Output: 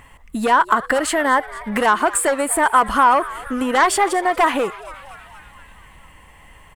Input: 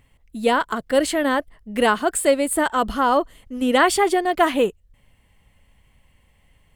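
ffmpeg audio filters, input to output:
-filter_complex "[0:a]bandreject=f=2.2k:w=10,aeval=exprs='0.668*sin(PI/2*2.24*val(0)/0.668)':c=same,acompressor=threshold=-20dB:ratio=6,equalizer=f=125:t=o:w=1:g=-3,equalizer=f=1k:t=o:w=1:g=11,equalizer=f=2k:t=o:w=1:g=7,equalizer=f=4k:t=o:w=1:g=-3,equalizer=f=8k:t=o:w=1:g=5,asplit=2[a][b];[b]asplit=6[c][d][e][f][g][h];[c]adelay=237,afreqshift=140,volume=-18.5dB[i];[d]adelay=474,afreqshift=280,volume=-22.7dB[j];[e]adelay=711,afreqshift=420,volume=-26.8dB[k];[f]adelay=948,afreqshift=560,volume=-31dB[l];[g]adelay=1185,afreqshift=700,volume=-35.1dB[m];[h]adelay=1422,afreqshift=840,volume=-39.3dB[n];[i][j][k][l][m][n]amix=inputs=6:normalize=0[o];[a][o]amix=inputs=2:normalize=0,volume=-1dB"

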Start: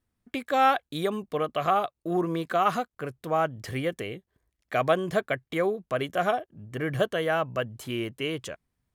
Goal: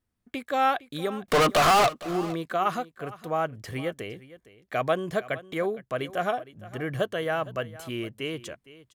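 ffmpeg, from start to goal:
-filter_complex "[0:a]asettb=1/sr,asplit=3[a][b][c];[a]atrim=end=1.284[d];[b]atrim=start=1.28:end=1.94,asetpts=PTS-STARTPTS,afade=t=in:d=0.004:c=qsin,afade=t=out:st=0.656:d=0.004:c=qsin,asplit=2[e][f];[f]highpass=f=720:p=1,volume=38dB,asoftclip=type=tanh:threshold=-11dB[g];[e][g]amix=inputs=2:normalize=0,lowpass=f=8k:p=1,volume=-6dB[h];[c]atrim=start=1.936[i];[d][h]acrossfade=d=0.004:c1=hsin:c2=qsin[j];[j][i]acrossfade=d=0.004:c1=qsin:c2=hsin,aecho=1:1:461:0.126,volume=-2dB"

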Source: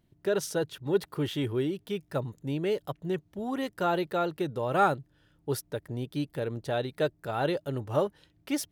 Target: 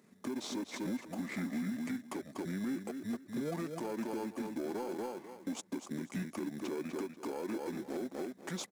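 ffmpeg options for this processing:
-filter_complex "[0:a]asplit=2[a][b];[b]acrusher=samples=15:mix=1:aa=0.000001,volume=-4.5dB[c];[a][c]amix=inputs=2:normalize=0,acompressor=threshold=-35dB:ratio=16,highpass=f=340:w=0.5412,highpass=f=340:w=1.3066,asplit=2[d][e];[e]aecho=0:1:246|492|738:0.447|0.0849|0.0161[f];[d][f]amix=inputs=2:normalize=0,alimiter=level_in=13dB:limit=-24dB:level=0:latency=1:release=219,volume=-13dB,equalizer=f=4.5k:t=o:w=0.35:g=-6,asetrate=27781,aresample=44100,atempo=1.5874,acrusher=bits=6:mode=log:mix=0:aa=0.000001,asoftclip=type=tanh:threshold=-37.5dB,volume=10dB"

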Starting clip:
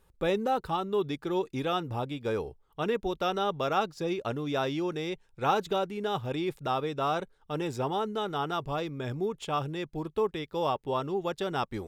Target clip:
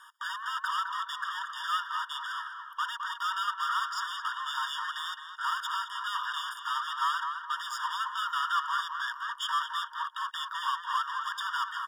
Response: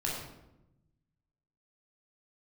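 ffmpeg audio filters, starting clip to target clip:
-filter_complex "[0:a]asplit=2[a][b];[b]highpass=f=720:p=1,volume=37dB,asoftclip=type=tanh:threshold=-13.5dB[c];[a][c]amix=inputs=2:normalize=0,lowpass=f=2.1k:p=1,volume=-6dB,asplit=2[d][e];[e]adelay=213,lowpass=f=1.7k:p=1,volume=-4dB,asplit=2[f][g];[g]adelay=213,lowpass=f=1.7k:p=1,volume=0.37,asplit=2[h][i];[i]adelay=213,lowpass=f=1.7k:p=1,volume=0.37,asplit=2[j][k];[k]adelay=213,lowpass=f=1.7k:p=1,volume=0.37,asplit=2[l][m];[m]adelay=213,lowpass=f=1.7k:p=1,volume=0.37[n];[d][f][h][j][l][n]amix=inputs=6:normalize=0,afftfilt=real='re*eq(mod(floor(b*sr/1024/940),2),1)':imag='im*eq(mod(floor(b*sr/1024/940),2),1)':win_size=1024:overlap=0.75,volume=-4.5dB"

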